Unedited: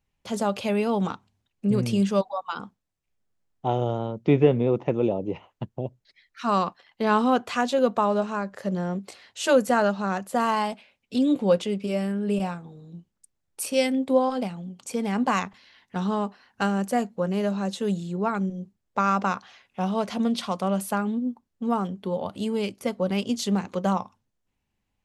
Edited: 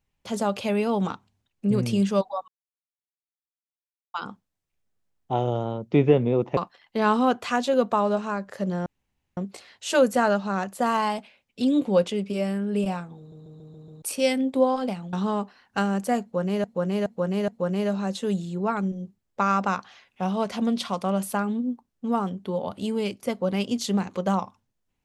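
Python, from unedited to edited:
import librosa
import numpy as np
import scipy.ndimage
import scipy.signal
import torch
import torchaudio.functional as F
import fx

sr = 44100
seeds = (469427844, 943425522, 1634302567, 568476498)

y = fx.edit(x, sr, fx.insert_silence(at_s=2.48, length_s=1.66),
    fx.cut(start_s=4.91, length_s=1.71),
    fx.insert_room_tone(at_s=8.91, length_s=0.51),
    fx.stutter_over(start_s=12.72, slice_s=0.14, count=6),
    fx.cut(start_s=14.67, length_s=1.3),
    fx.repeat(start_s=17.06, length_s=0.42, count=4), tone=tone)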